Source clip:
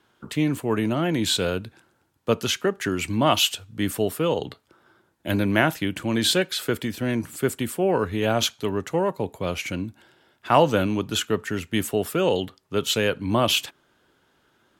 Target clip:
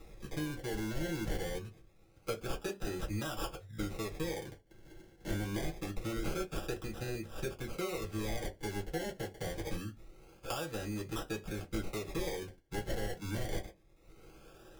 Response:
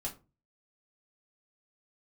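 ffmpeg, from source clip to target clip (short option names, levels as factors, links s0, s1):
-filter_complex "[0:a]acompressor=mode=upward:threshold=0.0112:ratio=2.5,acrusher=samples=28:mix=1:aa=0.000001:lfo=1:lforange=16.8:lforate=0.25,acompressor=threshold=0.0355:ratio=6,equalizer=f=125:t=o:w=1:g=-4,equalizer=f=250:t=o:w=1:g=-8,equalizer=f=1000:t=o:w=1:g=-8[s0];[1:a]atrim=start_sample=2205,asetrate=83790,aresample=44100[s1];[s0][s1]afir=irnorm=-1:irlink=0,volume=1.19"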